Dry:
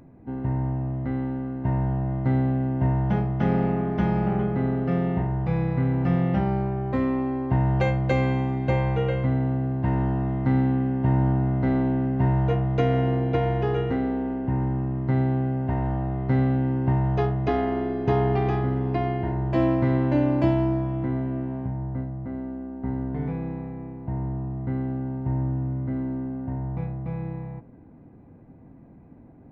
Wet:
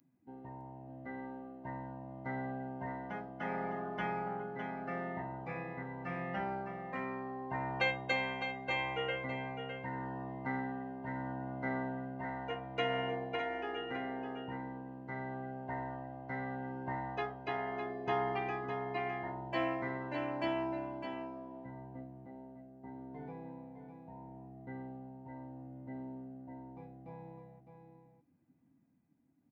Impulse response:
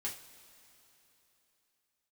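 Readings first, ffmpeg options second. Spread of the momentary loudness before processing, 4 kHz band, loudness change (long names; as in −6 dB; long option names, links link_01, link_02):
9 LU, can't be measured, −14.5 dB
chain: -filter_complex "[0:a]afftdn=noise_reduction=19:noise_floor=-38,aderivative,bandreject=frequency=107.1:width_type=h:width=4,bandreject=frequency=214.2:width_type=h:width=4,bandreject=frequency=321.3:width_type=h:width=4,bandreject=frequency=428.4:width_type=h:width=4,bandreject=frequency=535.5:width_type=h:width=4,bandreject=frequency=642.6:width_type=h:width=4,bandreject=frequency=749.7:width_type=h:width=4,bandreject=frequency=856.8:width_type=h:width=4,bandreject=frequency=963.9:width_type=h:width=4,bandreject=frequency=1071:width_type=h:width=4,bandreject=frequency=1178.1:width_type=h:width=4,bandreject=frequency=1285.2:width_type=h:width=4,bandreject=frequency=1392.3:width_type=h:width=4,bandreject=frequency=1499.4:width_type=h:width=4,bandreject=frequency=1606.5:width_type=h:width=4,bandreject=frequency=1713.6:width_type=h:width=4,bandreject=frequency=1820.7:width_type=h:width=4,bandreject=frequency=1927.8:width_type=h:width=4,bandreject=frequency=2034.9:width_type=h:width=4,bandreject=frequency=2142:width_type=h:width=4,bandreject=frequency=2249.1:width_type=h:width=4,bandreject=frequency=2356.2:width_type=h:width=4,bandreject=frequency=2463.3:width_type=h:width=4,bandreject=frequency=2570.4:width_type=h:width=4,bandreject=frequency=2677.5:width_type=h:width=4,bandreject=frequency=2784.6:width_type=h:width=4,bandreject=frequency=2891.7:width_type=h:width=4,bandreject=frequency=2998.8:width_type=h:width=4,bandreject=frequency=3105.9:width_type=h:width=4,bandreject=frequency=3213:width_type=h:width=4,bandreject=frequency=3320.1:width_type=h:width=4,bandreject=frequency=3427.2:width_type=h:width=4,bandreject=frequency=3534.3:width_type=h:width=4,bandreject=frequency=3641.4:width_type=h:width=4,bandreject=frequency=3748.5:width_type=h:width=4,bandreject=frequency=3855.6:width_type=h:width=4,tremolo=f=0.77:d=0.39,asplit=2[link_01][link_02];[link_02]aecho=0:1:608:0.398[link_03];[link_01][link_03]amix=inputs=2:normalize=0,volume=12dB"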